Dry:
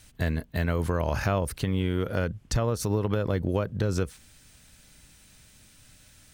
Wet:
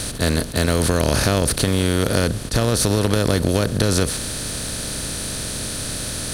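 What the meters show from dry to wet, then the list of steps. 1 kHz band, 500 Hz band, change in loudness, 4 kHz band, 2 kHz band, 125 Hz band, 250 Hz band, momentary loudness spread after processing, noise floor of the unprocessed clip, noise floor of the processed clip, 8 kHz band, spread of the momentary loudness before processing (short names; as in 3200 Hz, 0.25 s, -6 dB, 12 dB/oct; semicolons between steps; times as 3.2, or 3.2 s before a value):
+7.5 dB, +8.0 dB, +8.0 dB, +18.0 dB, +10.0 dB, +7.0 dB, +9.0 dB, 7 LU, -56 dBFS, -28 dBFS, +19.0 dB, 3 LU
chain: per-bin compression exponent 0.4; fifteen-band EQ 250 Hz +4 dB, 1000 Hz -3 dB, 4000 Hz +10 dB, 10000 Hz +12 dB; attack slew limiter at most 300 dB/s; gain +3 dB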